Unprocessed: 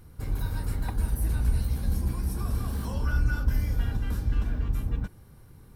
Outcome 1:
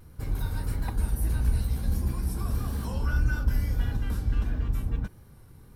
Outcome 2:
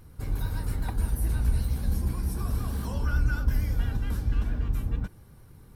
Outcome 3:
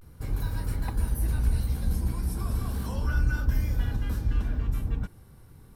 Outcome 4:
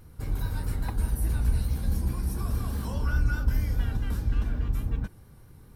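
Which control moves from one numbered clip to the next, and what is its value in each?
pitch vibrato, speed: 1.6, 8.9, 0.33, 4.8 Hertz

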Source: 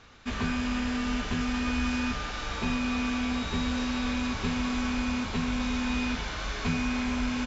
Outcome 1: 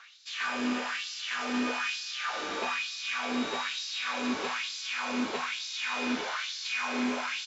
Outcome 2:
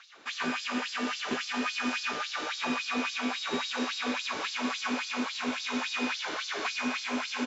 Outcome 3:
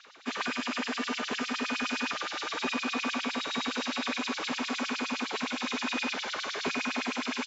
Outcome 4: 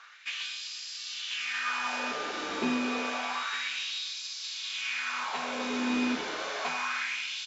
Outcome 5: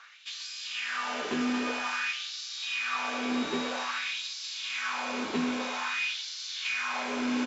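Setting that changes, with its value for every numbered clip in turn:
auto-filter high-pass, speed: 1.1, 3.6, 9.7, 0.29, 0.51 Hertz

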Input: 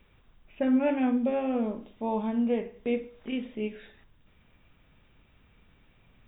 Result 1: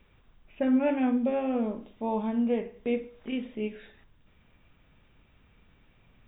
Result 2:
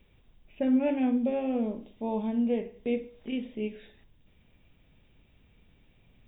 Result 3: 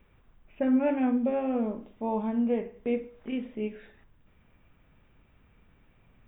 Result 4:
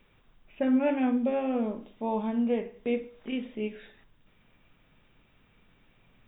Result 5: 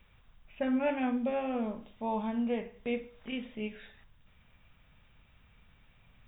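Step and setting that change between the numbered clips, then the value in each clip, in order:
parametric band, centre frequency: 15,000, 1,300, 4,100, 61, 340 Hertz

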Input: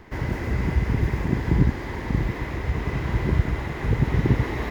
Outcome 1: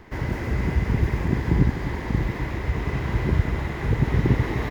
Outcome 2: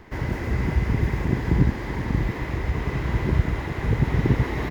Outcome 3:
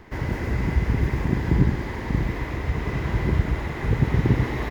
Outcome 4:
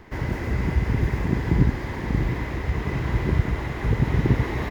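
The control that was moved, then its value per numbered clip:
repeating echo, delay time: 254, 389, 119, 709 milliseconds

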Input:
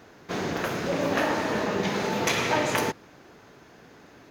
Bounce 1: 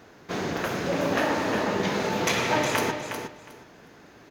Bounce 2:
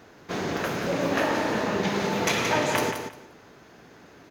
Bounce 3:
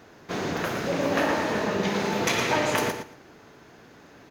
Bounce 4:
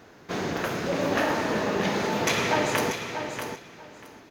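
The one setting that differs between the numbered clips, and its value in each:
repeating echo, delay time: 362, 175, 115, 638 milliseconds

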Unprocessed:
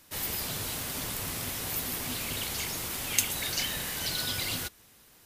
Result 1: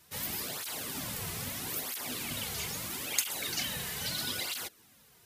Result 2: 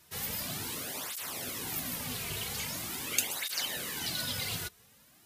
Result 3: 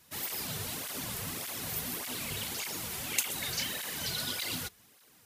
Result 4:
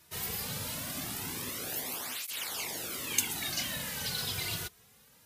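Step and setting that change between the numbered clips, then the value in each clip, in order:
through-zero flanger with one copy inverted, nulls at: 0.77, 0.43, 1.7, 0.22 Hertz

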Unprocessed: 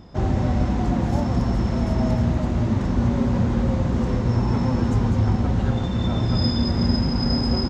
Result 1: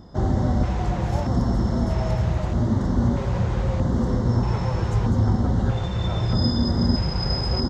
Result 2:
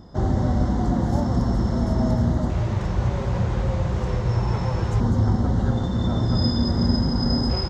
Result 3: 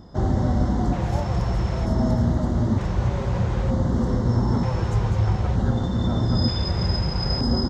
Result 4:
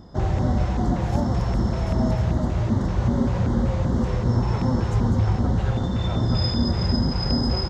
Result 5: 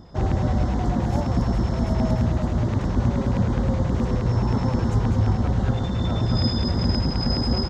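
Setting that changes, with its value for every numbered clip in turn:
auto-filter notch, speed: 0.79, 0.2, 0.54, 2.6, 9.5 Hertz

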